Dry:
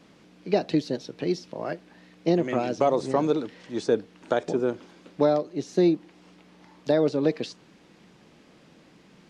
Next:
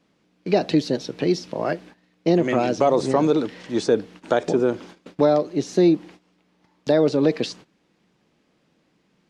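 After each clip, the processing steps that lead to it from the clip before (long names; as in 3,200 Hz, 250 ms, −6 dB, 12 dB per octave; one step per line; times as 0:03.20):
in parallel at +3 dB: brickwall limiter −20 dBFS, peak gain reduction 10.5 dB
on the sum: noise gate −41 dBFS, range −18 dB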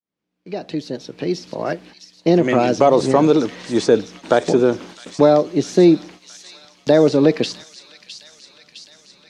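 fade in at the beginning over 2.63 s
delay with a high-pass on its return 660 ms, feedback 70%, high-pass 3,400 Hz, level −7 dB
level +5 dB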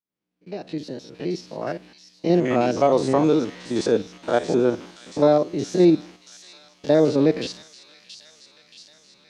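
spectrum averaged block by block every 50 ms
level −3.5 dB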